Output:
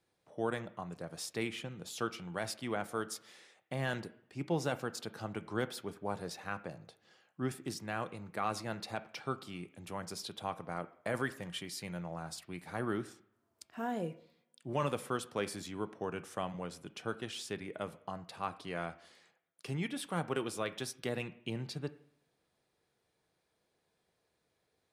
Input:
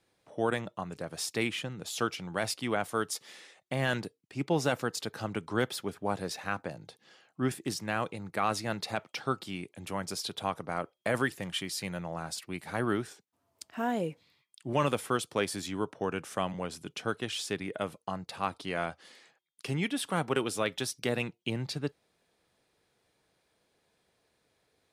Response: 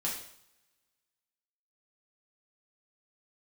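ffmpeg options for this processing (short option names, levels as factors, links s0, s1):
-filter_complex "[0:a]asplit=2[s0][s1];[s1]lowpass=f=2900:w=0.5412,lowpass=f=2900:w=1.3066[s2];[1:a]atrim=start_sample=2205[s3];[s2][s3]afir=irnorm=-1:irlink=0,volume=0.211[s4];[s0][s4]amix=inputs=2:normalize=0,volume=0.447"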